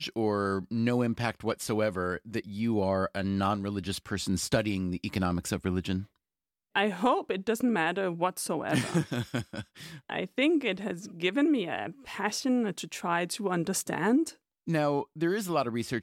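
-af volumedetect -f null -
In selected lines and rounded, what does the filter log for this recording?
mean_volume: -29.9 dB
max_volume: -13.9 dB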